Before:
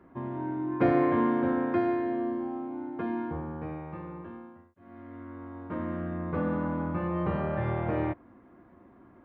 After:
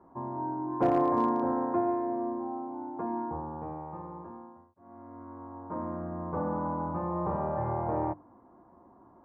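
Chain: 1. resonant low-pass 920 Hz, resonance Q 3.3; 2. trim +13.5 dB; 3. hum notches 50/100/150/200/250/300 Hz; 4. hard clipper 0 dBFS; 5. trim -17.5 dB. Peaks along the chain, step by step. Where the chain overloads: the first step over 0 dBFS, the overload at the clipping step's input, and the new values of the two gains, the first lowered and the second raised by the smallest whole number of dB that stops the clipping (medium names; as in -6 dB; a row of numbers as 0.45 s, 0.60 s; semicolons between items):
-10.0 dBFS, +3.5 dBFS, +3.5 dBFS, 0.0 dBFS, -17.5 dBFS; step 2, 3.5 dB; step 2 +9.5 dB, step 5 -13.5 dB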